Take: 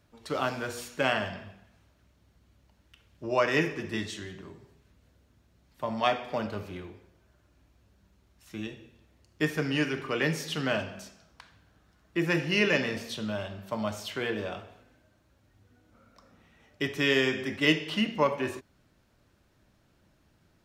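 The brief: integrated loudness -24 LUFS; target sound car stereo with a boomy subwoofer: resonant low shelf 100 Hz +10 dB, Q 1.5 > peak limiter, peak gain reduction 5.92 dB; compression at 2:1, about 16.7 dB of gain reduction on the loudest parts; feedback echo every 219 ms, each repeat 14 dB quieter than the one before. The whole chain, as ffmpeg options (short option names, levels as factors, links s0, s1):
-af "acompressor=threshold=0.00282:ratio=2,lowshelf=f=100:t=q:w=1.5:g=10,aecho=1:1:219|438:0.2|0.0399,volume=14.1,alimiter=limit=0.316:level=0:latency=1"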